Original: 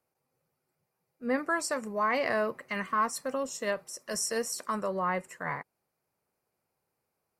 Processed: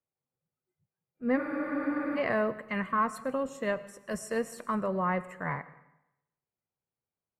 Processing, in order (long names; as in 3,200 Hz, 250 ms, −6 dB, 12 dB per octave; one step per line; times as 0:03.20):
bass and treble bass +7 dB, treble −10 dB
noise reduction from a noise print of the clip's start 15 dB
parametric band 5,400 Hz −9.5 dB 0.48 octaves
convolution reverb RT60 0.90 s, pre-delay 60 ms, DRR 16 dB
frozen spectrum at 0:01.39, 0.77 s